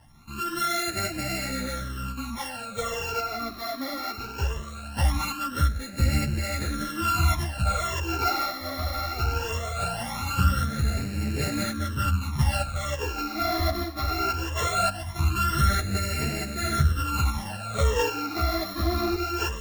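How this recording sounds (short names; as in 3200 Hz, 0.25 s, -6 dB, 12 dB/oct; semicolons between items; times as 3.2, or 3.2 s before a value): a buzz of ramps at a fixed pitch in blocks of 32 samples; phasing stages 12, 0.2 Hz, lowest notch 150–1100 Hz; tremolo saw up 0.94 Hz, depth 45%; a shimmering, thickened sound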